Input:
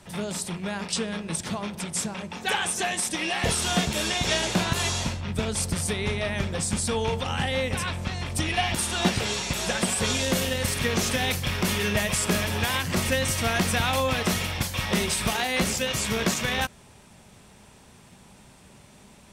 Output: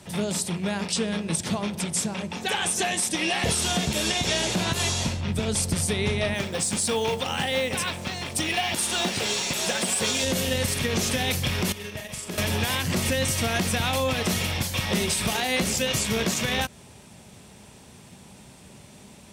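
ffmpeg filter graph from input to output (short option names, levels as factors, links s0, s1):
-filter_complex "[0:a]asettb=1/sr,asplit=3[s0][s1][s2];[s0]atrim=end=6.344[s3];[s1]atrim=start=6.34:end=10.24,asetpts=PTS-STARTPTS,afade=t=in:d=0.004:c=qsin,afade=t=out:st=3.896:d=0.004:c=qsin,highpass=f=300:p=1,acrusher=bits=6:mode=log:mix=0:aa=0.000001[s4];[s2]atrim=start=10.236[s5];[s3][s4]acrossfade=d=0.004:c1=hsin:c2=qsin[s6];[s6][s5]acrossfade=d=0.004:c1=qsin:c2=hsin,asettb=1/sr,asplit=3[s7][s8][s9];[s7]atrim=end=11.724[s10];[s8]atrim=start=11.72:end=12.38,asetpts=PTS-STARTPTS,afade=t=in:d=0.004:c=qsin,afade=t=out:st=0.656:d=0.004:c=qsin,agate=range=0.2:threshold=0.0562:ratio=16:release=100:detection=peak,acompressor=threshold=0.0158:ratio=4:attack=3.2:release=140:knee=1:detection=peak,asplit=2[s11][s12];[s12]adelay=41,volume=0.501[s13];[s11][s13]amix=inputs=2:normalize=0,atrim=end_sample=29106[s14];[s9]atrim=start=12.376[s15];[s10][s14]acrossfade=d=0.004:c1=hsin:c2=qsin[s16];[s16][s15]acrossfade=d=0.004:c1=qsin:c2=hsin,highpass=62,equalizer=f=1300:t=o:w=1.5:g=-4.5,alimiter=limit=0.112:level=0:latency=1:release=140,volume=1.68"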